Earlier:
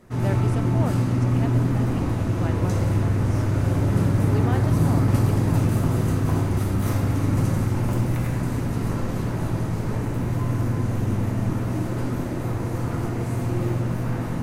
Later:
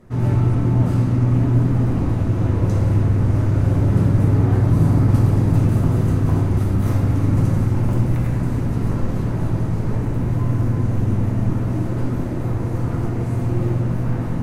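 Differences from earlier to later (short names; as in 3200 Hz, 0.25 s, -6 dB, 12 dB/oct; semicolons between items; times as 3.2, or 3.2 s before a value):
speech -6.5 dB; master: add tilt -1.5 dB/oct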